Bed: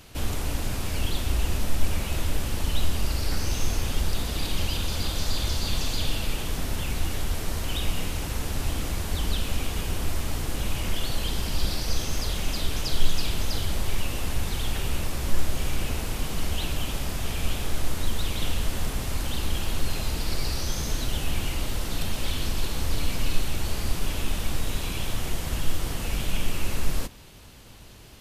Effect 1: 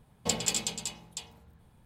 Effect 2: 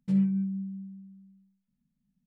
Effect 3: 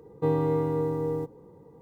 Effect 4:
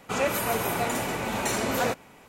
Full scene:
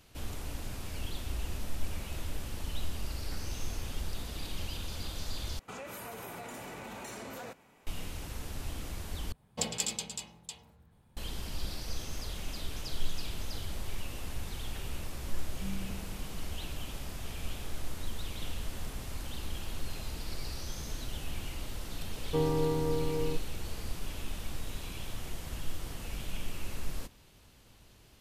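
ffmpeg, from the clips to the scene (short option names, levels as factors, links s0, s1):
-filter_complex "[0:a]volume=0.282[s0];[4:a]acompressor=threshold=0.02:ratio=6:attack=17:release=43:knee=1:detection=peak[s1];[s0]asplit=3[s2][s3][s4];[s2]atrim=end=5.594[s5];[s1]atrim=end=2.28,asetpts=PTS-STARTPTS,volume=0.299[s6];[s3]atrim=start=7.866:end=9.324[s7];[1:a]atrim=end=1.85,asetpts=PTS-STARTPTS,volume=0.631[s8];[s4]atrim=start=11.166[s9];[2:a]atrim=end=2.26,asetpts=PTS-STARTPTS,volume=0.141,afade=t=in:d=0.004:c=hsin,afade=t=out:st=2.256:d=0.004:c=hsin,adelay=15520[s10];[3:a]atrim=end=1.81,asetpts=PTS-STARTPTS,volume=0.596,afade=t=in:d=0.004:c=hsin,afade=t=out:st=1.806:d=0.004:c=hsin,adelay=22110[s11];[s5][s6]acrossfade=d=0.004:c1=hsin:c2=hsin[s12];[s12][s7]acrossfade=d=0.004:c1=hsin:c2=hsin[s13];[s13][s8]acrossfade=d=0.004:c1=hsin:c2=hsin[s14];[s14][s9]acrossfade=d=0.004:c1=hsin:c2=hsin[s15];[s15][s10][s11]amix=inputs=3:normalize=0"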